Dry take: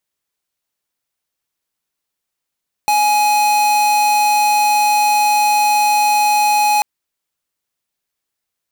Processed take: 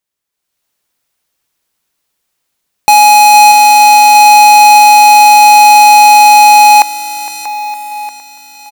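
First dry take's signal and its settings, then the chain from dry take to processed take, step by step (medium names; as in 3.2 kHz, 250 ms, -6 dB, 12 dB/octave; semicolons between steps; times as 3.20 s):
tone square 837 Hz -13.5 dBFS 3.94 s
level rider gain up to 11.5 dB; feedback delay 460 ms, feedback 54%, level -15.5 dB; bit-crushed delay 635 ms, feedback 55%, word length 6-bit, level -12 dB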